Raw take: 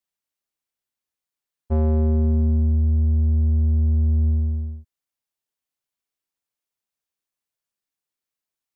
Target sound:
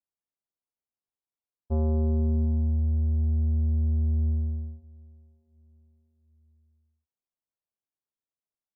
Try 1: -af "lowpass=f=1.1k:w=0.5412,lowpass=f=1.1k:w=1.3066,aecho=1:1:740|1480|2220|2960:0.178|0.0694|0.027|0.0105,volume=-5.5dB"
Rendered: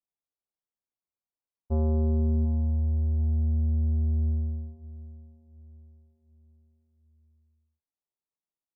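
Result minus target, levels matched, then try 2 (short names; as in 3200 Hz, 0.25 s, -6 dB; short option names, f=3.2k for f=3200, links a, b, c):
echo-to-direct +7.5 dB
-af "lowpass=f=1.1k:w=0.5412,lowpass=f=1.1k:w=1.3066,aecho=1:1:740|1480|2220:0.075|0.0292|0.0114,volume=-5.5dB"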